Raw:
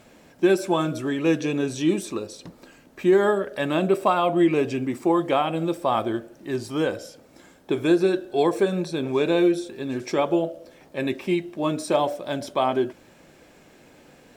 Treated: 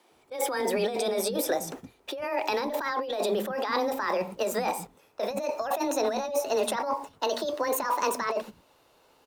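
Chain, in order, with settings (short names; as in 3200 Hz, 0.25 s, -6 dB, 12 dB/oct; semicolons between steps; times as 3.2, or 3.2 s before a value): speed glide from 140% -> 170%; negative-ratio compressor -28 dBFS, ratio -1; frequency shift +16 Hz; gate -38 dBFS, range -15 dB; bands offset in time highs, lows 0.11 s, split 240 Hz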